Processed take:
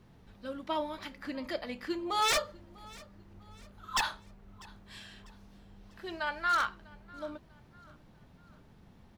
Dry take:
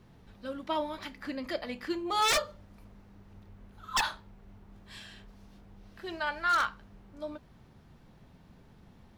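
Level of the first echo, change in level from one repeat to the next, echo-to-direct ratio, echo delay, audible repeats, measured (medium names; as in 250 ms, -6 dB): -23.0 dB, -8.0 dB, -22.0 dB, 646 ms, 2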